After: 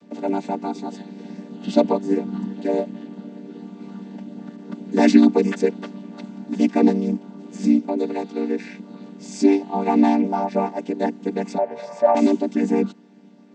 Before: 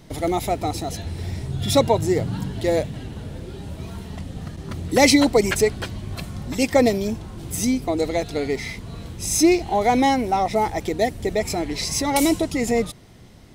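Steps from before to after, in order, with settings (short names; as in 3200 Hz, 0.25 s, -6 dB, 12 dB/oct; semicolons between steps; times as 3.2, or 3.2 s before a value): chord vocoder minor triad, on G3; 11.58–12.15 EQ curve 140 Hz 0 dB, 290 Hz -20 dB, 580 Hz +15 dB, 4000 Hz -12 dB; gain +1.5 dB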